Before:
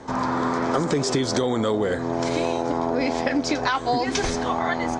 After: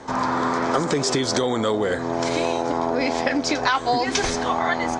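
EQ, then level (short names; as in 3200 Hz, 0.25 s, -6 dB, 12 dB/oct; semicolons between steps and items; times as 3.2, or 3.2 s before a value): low shelf 460 Hz -5.5 dB; +3.5 dB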